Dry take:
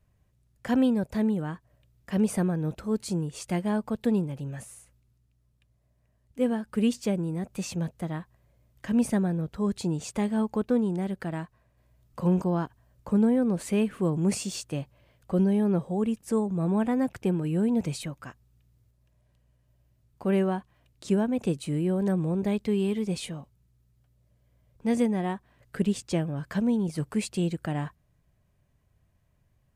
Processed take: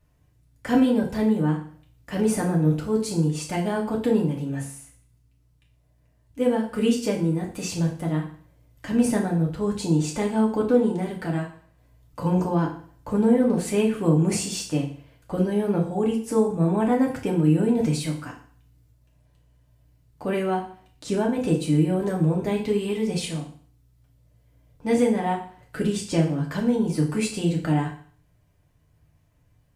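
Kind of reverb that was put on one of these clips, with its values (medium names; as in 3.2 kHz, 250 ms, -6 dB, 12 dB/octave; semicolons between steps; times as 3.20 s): FDN reverb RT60 0.49 s, low-frequency decay 1×, high-frequency decay 1×, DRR -2 dB; trim +1.5 dB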